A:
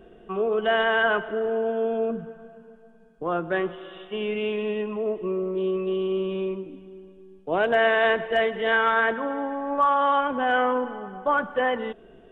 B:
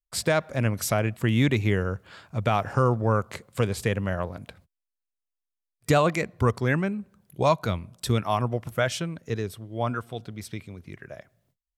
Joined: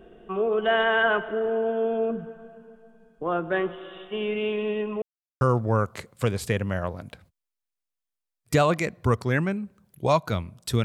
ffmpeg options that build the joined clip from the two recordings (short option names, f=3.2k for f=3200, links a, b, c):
-filter_complex "[0:a]apad=whole_dur=10.84,atrim=end=10.84,asplit=2[a][b];[a]atrim=end=5.02,asetpts=PTS-STARTPTS,afade=t=out:st=5.016:d=0.004:c=hsin[c];[b]atrim=start=5.02:end=5.41,asetpts=PTS-STARTPTS,volume=0[d];[1:a]atrim=start=2.77:end=8.2,asetpts=PTS-STARTPTS,afade=t=in:d=0.004:c=hsin[e];[c][d][e]concat=n=3:v=0:a=1"